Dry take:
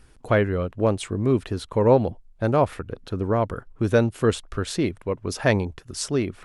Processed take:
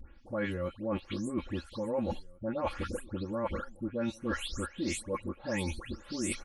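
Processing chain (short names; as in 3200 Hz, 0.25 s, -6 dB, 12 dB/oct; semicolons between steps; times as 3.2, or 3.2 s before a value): spectral delay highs late, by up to 0.259 s; bell 110 Hz +5.5 dB 1.6 oct; comb 3.6 ms, depth 91%; reverse; compressor 6:1, threshold -32 dBFS, peak gain reduction 21 dB; reverse; outdoor echo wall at 290 m, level -24 dB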